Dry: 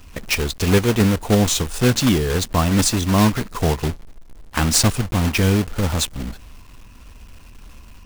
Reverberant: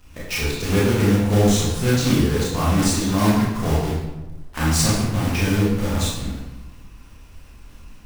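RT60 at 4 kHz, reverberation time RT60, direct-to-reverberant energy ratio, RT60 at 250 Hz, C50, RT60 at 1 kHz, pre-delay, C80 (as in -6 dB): 0.70 s, 1.1 s, -7.0 dB, 1.3 s, 0.0 dB, 0.95 s, 20 ms, 3.5 dB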